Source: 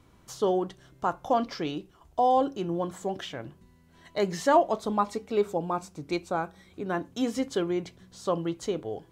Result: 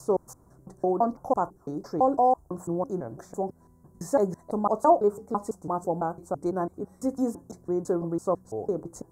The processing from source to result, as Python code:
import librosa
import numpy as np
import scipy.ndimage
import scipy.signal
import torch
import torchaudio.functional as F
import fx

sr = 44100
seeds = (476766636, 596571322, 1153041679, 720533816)

y = fx.block_reorder(x, sr, ms=167.0, group=3)
y = scipy.signal.sosfilt(scipy.signal.cheby1(2, 1.0, [950.0, 8200.0], 'bandstop', fs=sr, output='sos'), y)
y = y * librosa.db_to_amplitude(2.0)